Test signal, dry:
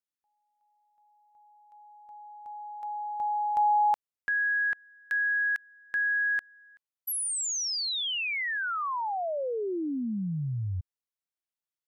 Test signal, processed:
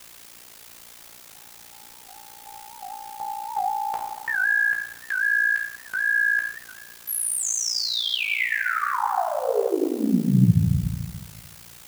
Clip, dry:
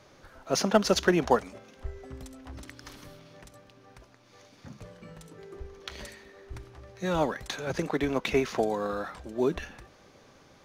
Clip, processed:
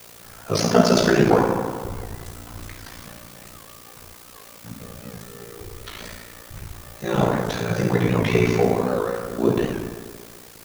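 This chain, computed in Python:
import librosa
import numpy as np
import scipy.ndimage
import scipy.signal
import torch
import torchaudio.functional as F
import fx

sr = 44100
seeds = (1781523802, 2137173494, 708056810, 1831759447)

p1 = fx.rev_fdn(x, sr, rt60_s=1.7, lf_ratio=1.05, hf_ratio=0.6, size_ms=40.0, drr_db=-5.0)
p2 = fx.dynamic_eq(p1, sr, hz=150.0, q=1.2, threshold_db=-38.0, ratio=4.0, max_db=4)
p3 = fx.quant_dither(p2, sr, seeds[0], bits=6, dither='triangular')
p4 = p2 + F.gain(torch.from_numpy(p3), -7.0).numpy()
p5 = p4 * np.sin(2.0 * np.pi * 29.0 * np.arange(len(p4)) / sr)
y = fx.record_warp(p5, sr, rpm=78.0, depth_cents=160.0)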